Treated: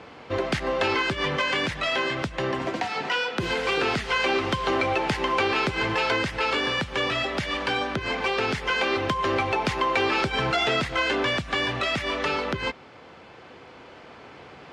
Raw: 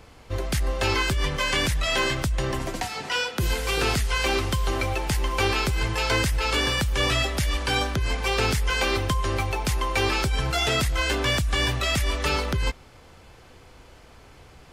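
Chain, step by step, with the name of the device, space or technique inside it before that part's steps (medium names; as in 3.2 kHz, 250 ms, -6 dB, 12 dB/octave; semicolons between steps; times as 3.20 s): AM radio (band-pass 190–3300 Hz; compression, threshold -27 dBFS, peak gain reduction 7 dB; saturation -20 dBFS, distortion -24 dB; tremolo 0.2 Hz, depth 28%); trim +8 dB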